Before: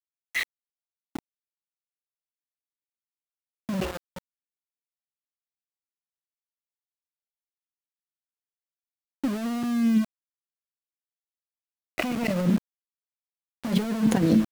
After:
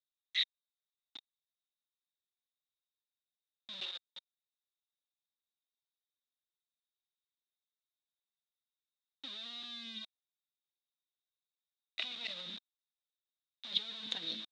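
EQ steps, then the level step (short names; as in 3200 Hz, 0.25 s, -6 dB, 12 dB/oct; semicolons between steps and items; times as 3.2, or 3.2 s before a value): band-pass 3700 Hz, Q 18; air absorption 77 m; +15.5 dB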